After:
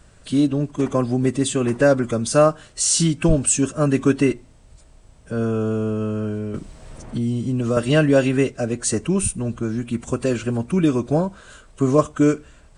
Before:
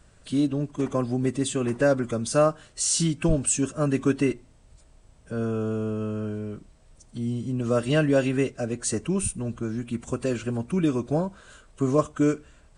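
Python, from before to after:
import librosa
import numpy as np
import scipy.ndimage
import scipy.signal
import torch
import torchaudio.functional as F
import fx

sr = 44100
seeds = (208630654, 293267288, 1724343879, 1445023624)

y = fx.band_squash(x, sr, depth_pct=70, at=(6.54, 7.77))
y = y * librosa.db_to_amplitude(5.5)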